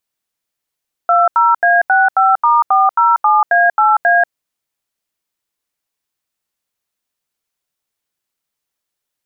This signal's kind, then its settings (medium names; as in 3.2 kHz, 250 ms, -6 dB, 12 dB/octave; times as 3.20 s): DTMF "20A65*407A8A", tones 188 ms, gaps 81 ms, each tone -10.5 dBFS